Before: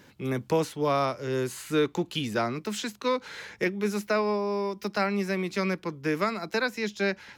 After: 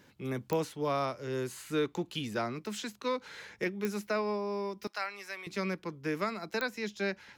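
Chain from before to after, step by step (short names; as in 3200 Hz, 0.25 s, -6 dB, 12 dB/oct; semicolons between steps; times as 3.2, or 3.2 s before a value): 4.87–5.47 HPF 920 Hz 12 dB/oct; pops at 0.53/3.85/6.61, -12 dBFS; gain -6 dB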